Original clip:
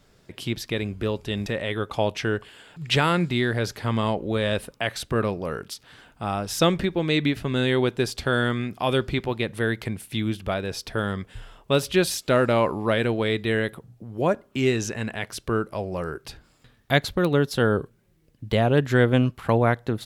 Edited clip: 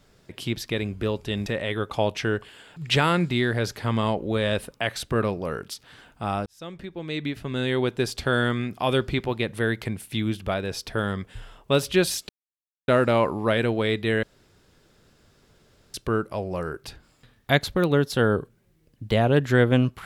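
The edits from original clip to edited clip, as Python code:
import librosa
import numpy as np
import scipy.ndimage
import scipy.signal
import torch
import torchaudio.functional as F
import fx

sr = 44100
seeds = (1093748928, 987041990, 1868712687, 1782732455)

y = fx.edit(x, sr, fx.fade_in_span(start_s=6.46, length_s=1.73),
    fx.insert_silence(at_s=12.29, length_s=0.59),
    fx.room_tone_fill(start_s=13.64, length_s=1.71), tone=tone)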